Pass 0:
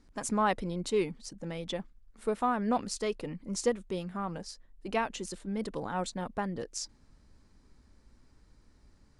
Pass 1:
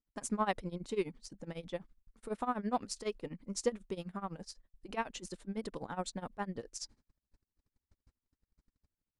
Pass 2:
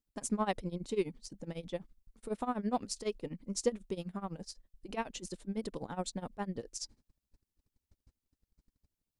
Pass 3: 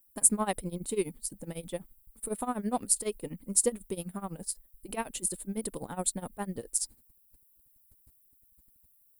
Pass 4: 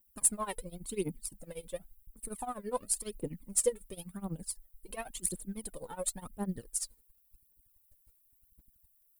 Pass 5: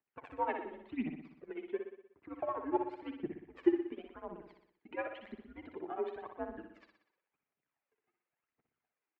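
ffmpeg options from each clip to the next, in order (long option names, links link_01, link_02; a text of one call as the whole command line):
ffmpeg -i in.wav -af "tremolo=f=12:d=0.89,agate=range=-26dB:threshold=-57dB:ratio=16:detection=peak,volume=-2dB" out.wav
ffmpeg -i in.wav -af "equalizer=frequency=1400:width_type=o:width=1.7:gain=-6,volume=2.5dB" out.wav
ffmpeg -i in.wav -af "aexciter=amount=12.4:drive=7.9:freq=8700,volume=2dB" out.wav
ffmpeg -i in.wav -af "aphaser=in_gain=1:out_gain=1:delay=2.3:decay=0.74:speed=0.93:type=triangular,volume=-7.5dB" out.wav
ffmpeg -i in.wav -filter_complex "[0:a]highpass=frequency=420:width_type=q:width=0.5412,highpass=frequency=420:width_type=q:width=1.307,lowpass=frequency=2600:width_type=q:width=0.5176,lowpass=frequency=2600:width_type=q:width=0.7071,lowpass=frequency=2600:width_type=q:width=1.932,afreqshift=-140,asplit=2[link_01][link_02];[link_02]aecho=0:1:61|122|183|244|305|366|427:0.473|0.265|0.148|0.0831|0.0465|0.0261|0.0146[link_03];[link_01][link_03]amix=inputs=2:normalize=0,volume=3dB" out.wav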